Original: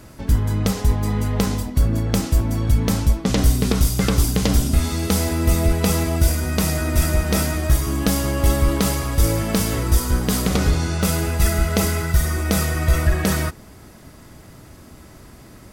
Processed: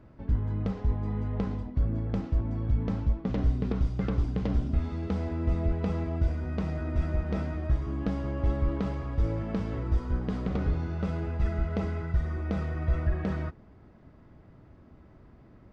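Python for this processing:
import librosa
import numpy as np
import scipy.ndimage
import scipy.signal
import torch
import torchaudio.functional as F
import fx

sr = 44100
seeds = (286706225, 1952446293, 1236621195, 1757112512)

y = fx.spacing_loss(x, sr, db_at_10k=42)
y = y * 10.0 ** (-9.0 / 20.0)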